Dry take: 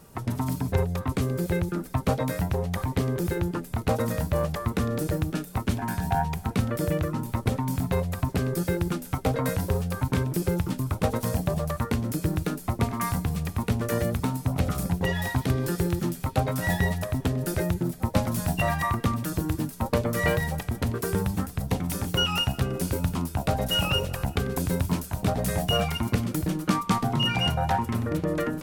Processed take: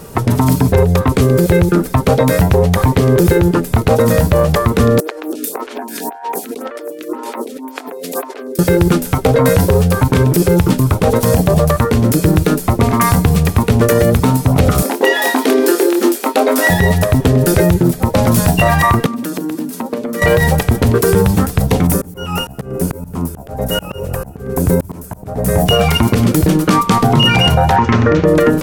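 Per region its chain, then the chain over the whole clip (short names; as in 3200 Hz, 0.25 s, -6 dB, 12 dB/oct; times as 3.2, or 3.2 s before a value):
5–8.59 Chebyshev high-pass 250 Hz, order 5 + negative-ratio compressor -41 dBFS + photocell phaser 1.9 Hz
14.82–16.7 brick-wall FIR high-pass 220 Hz + doubler 26 ms -9 dB
19.06–20.22 HPF 190 Hz 24 dB/oct + bell 260 Hz +10.5 dB 0.52 oct + compressor 12:1, threshold -35 dBFS
21.87–25.66 bell 3600 Hz -12.5 dB 1.7 oct + auto swell 0.407 s
27.76–28.25 elliptic low-pass 6400 Hz, stop band 70 dB + bell 1600 Hz +6.5 dB 1.5 oct
whole clip: bell 450 Hz +6 dB 0.48 oct; maximiser +18 dB; gain -1 dB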